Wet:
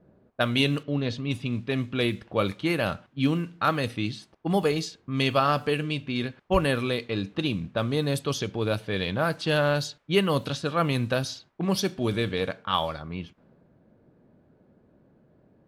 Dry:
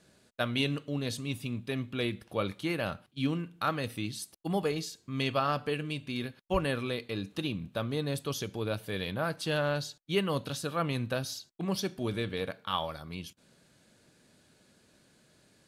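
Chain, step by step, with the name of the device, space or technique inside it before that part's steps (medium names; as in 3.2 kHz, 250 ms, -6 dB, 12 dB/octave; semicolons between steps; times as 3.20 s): cassette deck with a dynamic noise filter (white noise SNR 34 dB; level-controlled noise filter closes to 650 Hz, open at -27.5 dBFS); 0.83–1.31 s: distance through air 170 m; trim +6.5 dB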